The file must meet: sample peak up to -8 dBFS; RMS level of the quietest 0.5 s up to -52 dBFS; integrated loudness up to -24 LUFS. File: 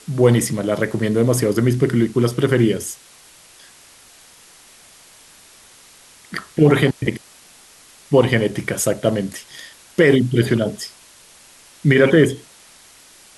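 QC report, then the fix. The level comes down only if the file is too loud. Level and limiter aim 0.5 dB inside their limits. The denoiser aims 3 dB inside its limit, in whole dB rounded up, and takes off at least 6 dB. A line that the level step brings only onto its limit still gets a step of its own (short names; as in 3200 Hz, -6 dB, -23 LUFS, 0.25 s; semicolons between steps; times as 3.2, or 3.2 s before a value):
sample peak -2.0 dBFS: fail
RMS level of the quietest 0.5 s -47 dBFS: fail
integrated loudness -17.5 LUFS: fail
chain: gain -7 dB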